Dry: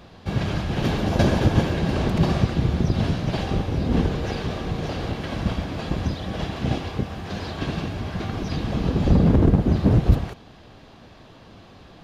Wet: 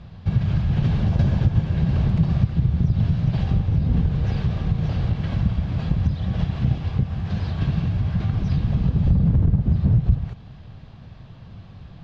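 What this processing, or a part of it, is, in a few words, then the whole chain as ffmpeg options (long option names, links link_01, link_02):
jukebox: -af "lowpass=5000,lowshelf=frequency=210:width_type=q:width=1.5:gain=12,acompressor=threshold=-13dB:ratio=3,volume=-4dB"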